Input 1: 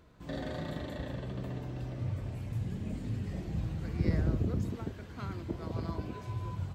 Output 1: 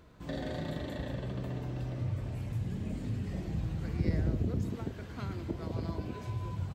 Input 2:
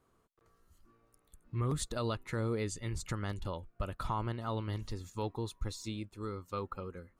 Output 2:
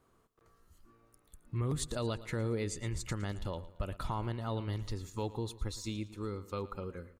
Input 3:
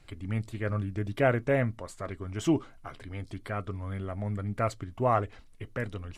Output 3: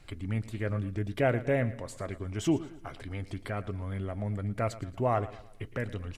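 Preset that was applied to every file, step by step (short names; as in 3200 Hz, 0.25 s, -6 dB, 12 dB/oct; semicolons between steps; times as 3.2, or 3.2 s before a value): dynamic EQ 1200 Hz, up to -5 dB, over -52 dBFS, Q 2.2; in parallel at -2 dB: compressor, threshold -38 dBFS; on the sum: feedback echo 0.113 s, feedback 41%, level -16.5 dB; gain -2.5 dB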